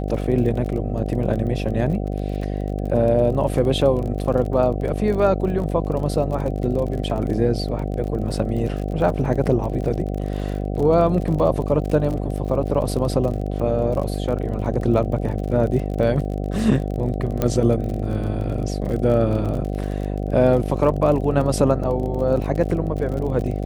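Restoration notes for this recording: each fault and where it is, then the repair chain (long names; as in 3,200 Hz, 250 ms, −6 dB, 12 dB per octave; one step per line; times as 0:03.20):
mains buzz 50 Hz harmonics 15 −25 dBFS
surface crackle 37 per second −28 dBFS
0:17.42: click −8 dBFS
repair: click removal
hum removal 50 Hz, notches 15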